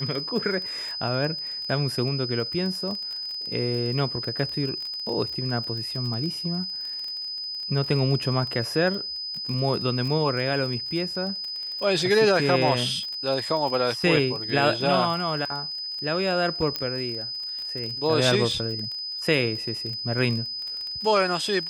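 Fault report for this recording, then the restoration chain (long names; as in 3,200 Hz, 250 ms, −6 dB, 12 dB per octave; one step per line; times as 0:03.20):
surface crackle 24 per second −30 dBFS
whistle 5,000 Hz −30 dBFS
0:16.76: click −12 dBFS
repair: click removal
notch filter 5,000 Hz, Q 30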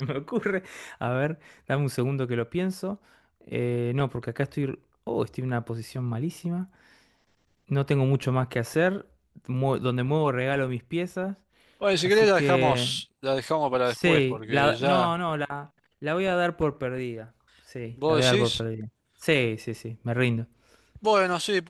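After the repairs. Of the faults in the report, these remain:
none of them is left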